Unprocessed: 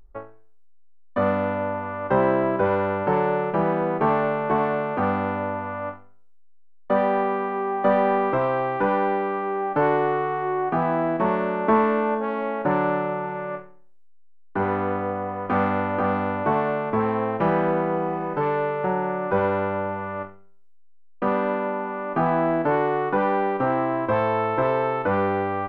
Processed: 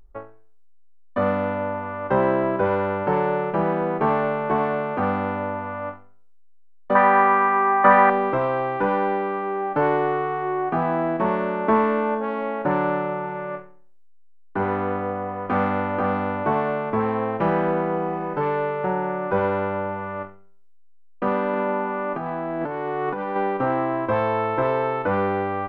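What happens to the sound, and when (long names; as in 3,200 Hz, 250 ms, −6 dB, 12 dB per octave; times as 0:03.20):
0:06.95–0:08.10: flat-topped bell 1,400 Hz +12 dB
0:21.53–0:23.36: compressor whose output falls as the input rises −26 dBFS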